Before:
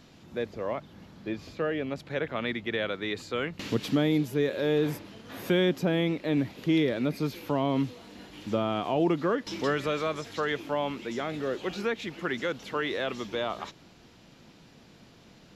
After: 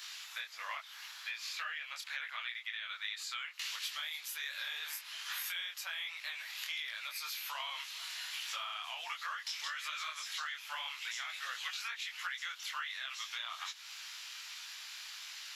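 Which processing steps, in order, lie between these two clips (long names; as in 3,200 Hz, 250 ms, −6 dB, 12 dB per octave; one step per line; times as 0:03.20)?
Bessel high-pass filter 1,900 Hz, order 6
high-shelf EQ 7,200 Hz +4.5 dB
in parallel at +2.5 dB: brickwall limiter −30.5 dBFS, peak gain reduction 8.5 dB
on the sum: downward compressor 6 to 1, threshold −46 dBFS, peak gain reduction 18 dB
micro pitch shift up and down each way 45 cents
level +11 dB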